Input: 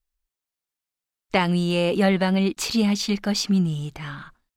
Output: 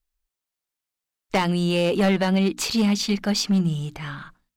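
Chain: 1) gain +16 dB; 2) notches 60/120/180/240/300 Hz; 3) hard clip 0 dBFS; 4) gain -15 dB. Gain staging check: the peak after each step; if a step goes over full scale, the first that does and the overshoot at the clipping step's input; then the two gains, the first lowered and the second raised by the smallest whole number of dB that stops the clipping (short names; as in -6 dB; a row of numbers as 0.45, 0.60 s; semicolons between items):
+9.5, +10.0, 0.0, -15.0 dBFS; step 1, 10.0 dB; step 1 +6 dB, step 4 -5 dB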